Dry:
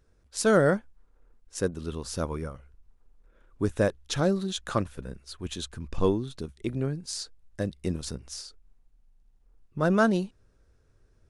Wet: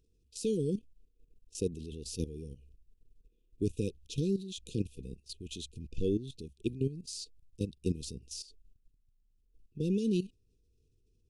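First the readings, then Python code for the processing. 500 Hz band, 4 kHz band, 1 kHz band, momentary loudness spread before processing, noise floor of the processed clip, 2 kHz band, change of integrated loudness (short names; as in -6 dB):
-9.0 dB, -7.0 dB, under -40 dB, 17 LU, -72 dBFS, -23.5 dB, -7.5 dB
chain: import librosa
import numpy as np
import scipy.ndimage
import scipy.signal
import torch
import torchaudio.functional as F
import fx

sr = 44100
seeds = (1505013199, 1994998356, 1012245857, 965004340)

y = fx.level_steps(x, sr, step_db=14)
y = fx.brickwall_bandstop(y, sr, low_hz=500.0, high_hz=2400.0)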